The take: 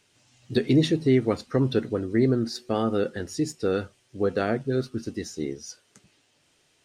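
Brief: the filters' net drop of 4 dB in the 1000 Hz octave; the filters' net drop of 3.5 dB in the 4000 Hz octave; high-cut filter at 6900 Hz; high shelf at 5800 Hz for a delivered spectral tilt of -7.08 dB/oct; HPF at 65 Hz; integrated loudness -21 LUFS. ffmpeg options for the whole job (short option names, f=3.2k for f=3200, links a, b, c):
-af "highpass=65,lowpass=6.9k,equalizer=f=1k:t=o:g=-6,equalizer=f=4k:t=o:g=-5,highshelf=f=5.8k:g=4.5,volume=5.5dB"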